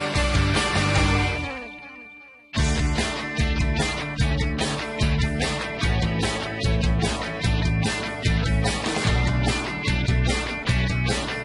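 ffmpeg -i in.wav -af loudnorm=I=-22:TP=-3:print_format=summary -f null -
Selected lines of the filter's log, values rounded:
Input Integrated:    -23.5 LUFS
Input True Peak:      -8.7 dBTP
Input LRA:             1.7 LU
Input Threshold:     -33.7 LUFS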